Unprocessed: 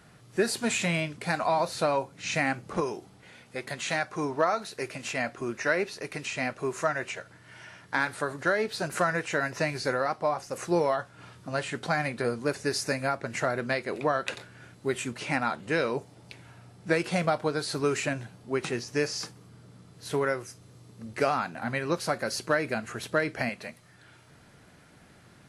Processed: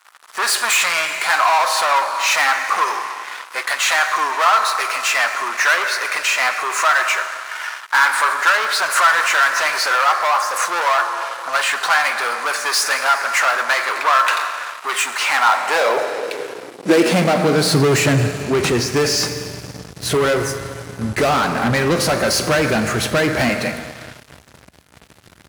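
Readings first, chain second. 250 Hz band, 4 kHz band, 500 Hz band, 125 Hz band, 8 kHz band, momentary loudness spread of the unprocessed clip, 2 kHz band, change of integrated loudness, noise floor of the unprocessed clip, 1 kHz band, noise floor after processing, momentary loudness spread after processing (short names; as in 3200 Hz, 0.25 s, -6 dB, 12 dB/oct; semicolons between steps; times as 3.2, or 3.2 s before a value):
+9.5 dB, +16.5 dB, +8.0 dB, +11.5 dB, +16.0 dB, 13 LU, +14.5 dB, +13.0 dB, -56 dBFS, +15.0 dB, -46 dBFS, 11 LU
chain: Schroeder reverb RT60 2.5 s, combs from 29 ms, DRR 11.5 dB; sample leveller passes 5; high-pass sweep 1100 Hz -> 61 Hz, 15.33–18.81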